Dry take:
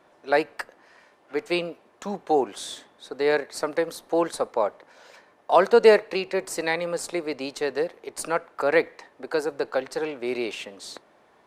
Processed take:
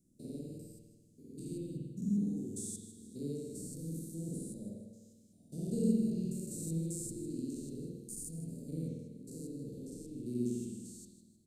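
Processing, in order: stepped spectrum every 0.2 s; elliptic band-stop 210–7500 Hz, stop band 80 dB; on a send: feedback echo 0.156 s, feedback 40%, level -13.5 dB; on the sum: spring tank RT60 1.1 s, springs 49 ms, chirp 45 ms, DRR -5 dB; gain +1 dB

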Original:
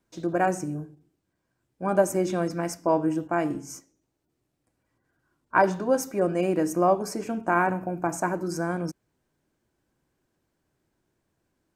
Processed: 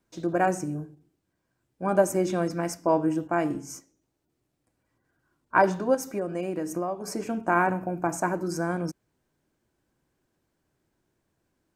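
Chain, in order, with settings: 5.94–7.08 compressor 12:1, threshold -26 dBFS, peak gain reduction 11 dB

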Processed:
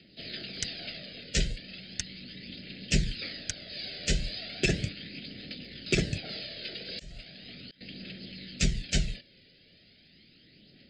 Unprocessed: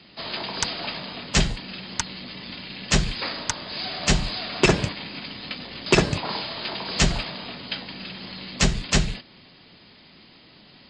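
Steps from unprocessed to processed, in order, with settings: 6.74–7.81 auto swell 0.608 s; phaser 0.37 Hz, delay 2.1 ms, feedback 38%; Butterworth band-stop 1000 Hz, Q 0.86; gain -8 dB

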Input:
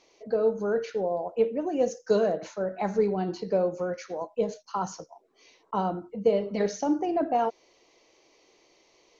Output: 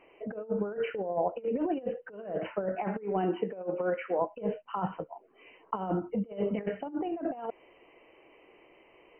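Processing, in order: 2.75–4.19 HPF 240 Hz 12 dB/oct; negative-ratio compressor -31 dBFS, ratio -0.5; brick-wall FIR low-pass 3100 Hz

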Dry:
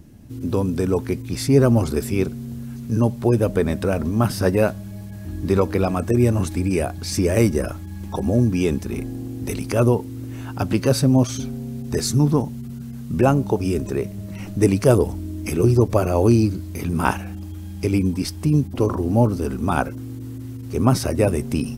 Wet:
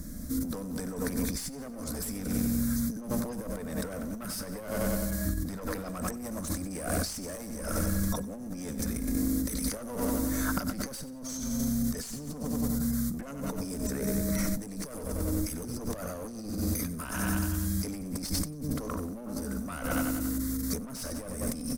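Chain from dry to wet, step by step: high shelf 2500 Hz +11 dB; fixed phaser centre 560 Hz, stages 8; one-sided clip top -24 dBFS, bottom -8.5 dBFS; low shelf 70 Hz +9.5 dB; feedback echo 93 ms, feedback 57%, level -11 dB; negative-ratio compressor -33 dBFS, ratio -1; gain -1 dB

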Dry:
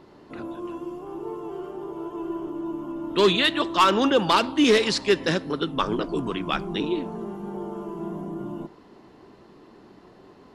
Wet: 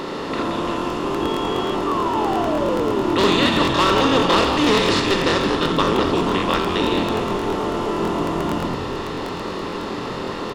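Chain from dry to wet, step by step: per-bin compression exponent 0.4; early reflections 37 ms -10 dB, 78 ms -8 dB; 1.86–3.58 painted sound fall 220–1200 Hz -21 dBFS; on a send: frequency-shifting echo 0.173 s, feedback 58%, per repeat -100 Hz, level -8.5 dB; 1.21–1.73 on the sum: whine 3300 Hz -29 dBFS; crackling interface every 0.11 s, samples 1024, repeat, from 0.77; gain -4 dB

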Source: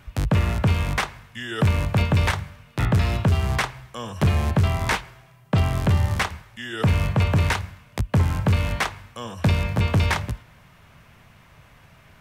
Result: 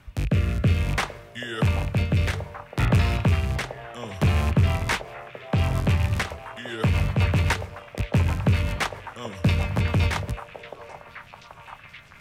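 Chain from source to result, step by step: rattling part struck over -19 dBFS, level -20 dBFS; rotary speaker horn 0.6 Hz, later 7.5 Hz, at 4.22; delay with a stepping band-pass 0.783 s, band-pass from 620 Hz, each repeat 0.7 oct, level -6 dB

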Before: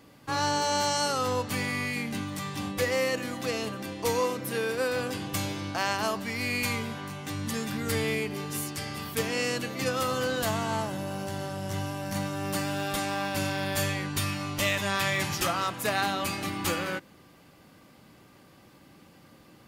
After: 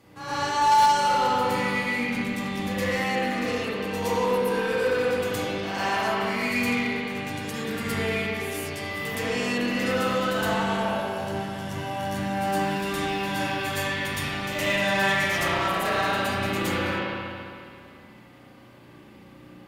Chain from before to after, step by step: reverse echo 0.116 s -6.5 dB; spring tank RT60 2.3 s, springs 33/56 ms, chirp 50 ms, DRR -8 dB; added harmonics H 3 -17 dB, 5 -21 dB, 6 -24 dB, 8 -23 dB, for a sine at -5.5 dBFS; gain -4 dB

